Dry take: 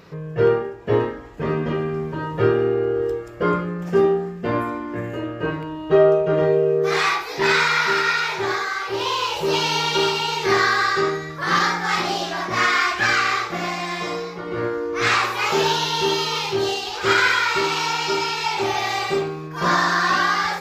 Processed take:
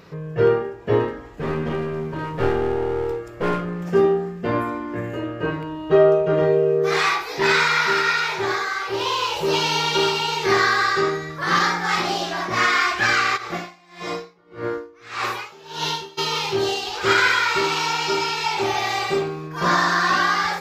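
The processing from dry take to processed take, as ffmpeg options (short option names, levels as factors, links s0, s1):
-filter_complex "[0:a]asettb=1/sr,asplit=3[s0][s1][s2];[s0]atrim=end=1.084[s3];[s1]atrim=start=1.08:end=3.87,asetpts=PTS-STARTPTS,afade=t=in:d=0.004:c=qsin,afade=t=out:st=2.786:d=0.004:c=qsin,aeval=exprs='clip(val(0),-1,0.0531)':c=same[s4];[s2]atrim=start=3.866[s5];[s3][s4]acrossfade=d=0.004:c1=hsin:c2=qsin[s6];[s6][s5]acrossfade=d=0.004:c1=qsin:c2=hsin,asplit=3[s7][s8][s9];[s7]afade=t=out:st=13.36:d=0.02[s10];[s8]aeval=exprs='val(0)*pow(10,-27*(0.5-0.5*cos(2*PI*1.7*n/s))/20)':c=same,afade=t=in:st=13.36:d=0.02,afade=t=out:st=16.17:d=0.02[s11];[s9]afade=t=in:st=16.17:d=0.02[s12];[s10][s11][s12]amix=inputs=3:normalize=0"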